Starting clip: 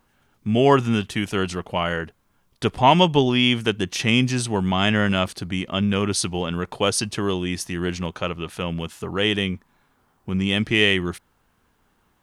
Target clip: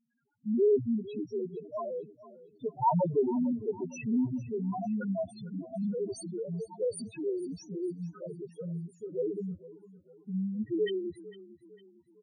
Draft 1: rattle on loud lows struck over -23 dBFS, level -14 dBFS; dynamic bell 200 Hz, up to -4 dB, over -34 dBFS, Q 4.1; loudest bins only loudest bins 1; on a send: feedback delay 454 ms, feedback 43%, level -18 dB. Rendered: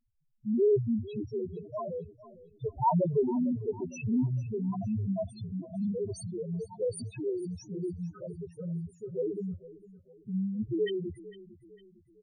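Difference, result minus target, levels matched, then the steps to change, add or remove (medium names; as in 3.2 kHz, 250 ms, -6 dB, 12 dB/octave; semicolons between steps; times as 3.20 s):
125 Hz band +4.0 dB
add after dynamic bell: high-pass 140 Hz 12 dB/octave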